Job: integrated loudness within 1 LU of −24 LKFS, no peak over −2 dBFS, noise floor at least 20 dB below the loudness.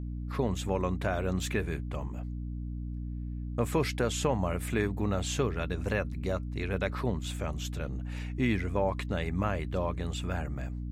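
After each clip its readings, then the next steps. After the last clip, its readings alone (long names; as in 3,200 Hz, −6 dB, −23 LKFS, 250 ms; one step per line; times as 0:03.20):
mains hum 60 Hz; hum harmonics up to 300 Hz; level of the hum −34 dBFS; integrated loudness −32.5 LKFS; sample peak −14.5 dBFS; target loudness −24.0 LKFS
→ mains-hum notches 60/120/180/240/300 Hz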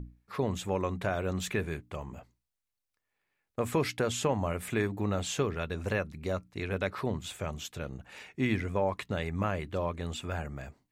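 mains hum none found; integrated loudness −33.5 LKFS; sample peak −15.5 dBFS; target loudness −24.0 LKFS
→ level +9.5 dB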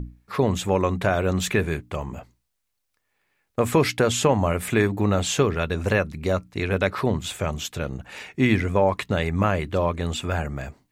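integrated loudness −24.0 LKFS; sample peak −6.0 dBFS; background noise floor −76 dBFS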